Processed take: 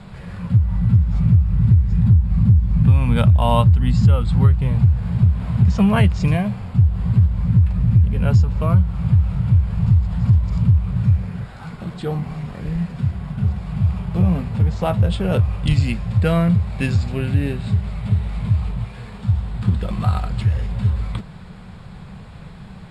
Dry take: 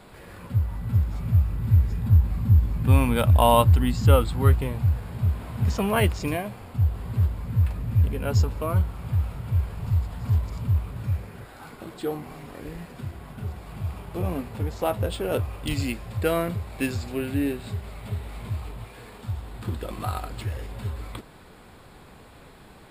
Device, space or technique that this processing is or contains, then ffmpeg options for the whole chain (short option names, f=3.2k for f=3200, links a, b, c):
jukebox: -af "lowpass=6.5k,lowshelf=f=230:t=q:w=3:g=7.5,acompressor=threshold=-15dB:ratio=5,volume=4.5dB"